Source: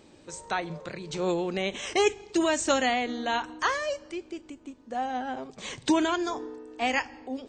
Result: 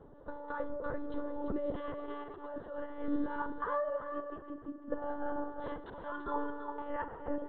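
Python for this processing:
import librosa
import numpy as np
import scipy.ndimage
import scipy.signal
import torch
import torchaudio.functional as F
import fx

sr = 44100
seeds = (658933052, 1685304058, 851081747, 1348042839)

y = scipy.signal.sosfilt(scipy.signal.butter(2, 1000.0, 'lowpass', fs=sr, output='sos'), x)
y = fx.low_shelf(y, sr, hz=210.0, db=-9.0)
y = fx.over_compress(y, sr, threshold_db=-36.0, ratio=-1.0)
y = fx.fixed_phaser(y, sr, hz=480.0, stages=8)
y = fx.echo_multitap(y, sr, ms=(46, 339), db=(-13.0, -9.0))
y = fx.rev_spring(y, sr, rt60_s=3.2, pass_ms=(32, 56), chirp_ms=35, drr_db=11.0)
y = fx.lpc_monotone(y, sr, seeds[0], pitch_hz=290.0, order=16)
y = y * librosa.db_to_amplitude(2.5)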